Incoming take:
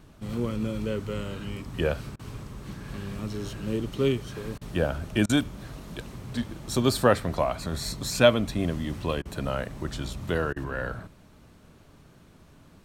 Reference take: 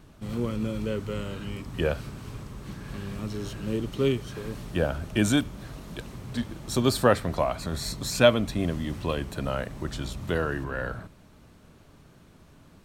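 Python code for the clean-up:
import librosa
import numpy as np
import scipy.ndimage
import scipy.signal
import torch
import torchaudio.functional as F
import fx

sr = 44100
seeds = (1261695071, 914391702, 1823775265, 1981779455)

y = fx.fix_interpolate(x, sr, at_s=(2.16, 4.58, 5.26, 9.22, 10.53), length_ms=32.0)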